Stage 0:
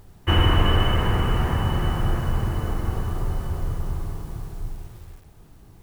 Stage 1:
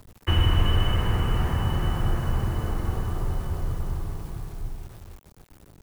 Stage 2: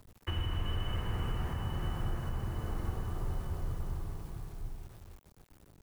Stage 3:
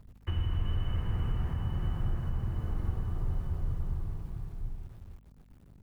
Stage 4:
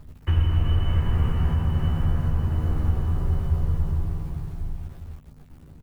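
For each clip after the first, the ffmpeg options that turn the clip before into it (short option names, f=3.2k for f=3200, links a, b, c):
-filter_complex "[0:a]aeval=exprs='val(0)*gte(abs(val(0)),0.00531)':c=same,acrossover=split=170|3000[a][b][c];[b]acompressor=threshold=-28dB:ratio=6[d];[a][d][c]amix=inputs=3:normalize=0,volume=-1.5dB"
-af "alimiter=limit=-16.5dB:level=0:latency=1:release=413,volume=-8dB"
-af "bass=f=250:g=8,treble=f=4k:g=-6,aeval=exprs='val(0)+0.00224*(sin(2*PI*50*n/s)+sin(2*PI*2*50*n/s)/2+sin(2*PI*3*50*n/s)/3+sin(2*PI*4*50*n/s)/4+sin(2*PI*5*50*n/s)/5)':c=same,volume=-4dB"
-filter_complex "[0:a]asplit=2[a][b];[b]adelay=13,volume=-3.5dB[c];[a][c]amix=inputs=2:normalize=0,volume=8dB"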